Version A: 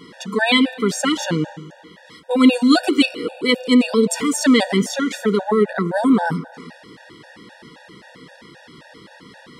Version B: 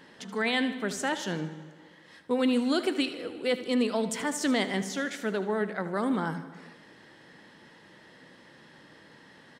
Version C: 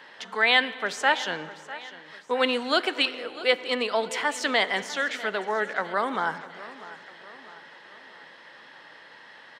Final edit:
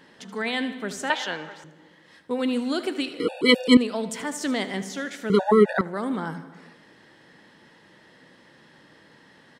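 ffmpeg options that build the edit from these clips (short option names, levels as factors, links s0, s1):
-filter_complex "[0:a]asplit=2[s0][s1];[1:a]asplit=4[s2][s3][s4][s5];[s2]atrim=end=1.102[s6];[2:a]atrim=start=1.098:end=1.642[s7];[s3]atrim=start=1.638:end=3.202[s8];[s0]atrim=start=3.198:end=3.772[s9];[s4]atrim=start=3.768:end=5.302[s10];[s1]atrim=start=5.298:end=5.812[s11];[s5]atrim=start=5.808[s12];[s6][s7]acrossfade=d=0.004:c1=hsin:c2=hsin[s13];[s13][s8]acrossfade=d=0.004:c1=hsin:c2=hsin[s14];[s14][s9]acrossfade=d=0.004:c1=hsin:c2=hsin[s15];[s15][s10]acrossfade=d=0.004:c1=hsin:c2=hsin[s16];[s16][s11]acrossfade=d=0.004:c1=hsin:c2=hsin[s17];[s17][s12]acrossfade=d=0.004:c1=hsin:c2=hsin"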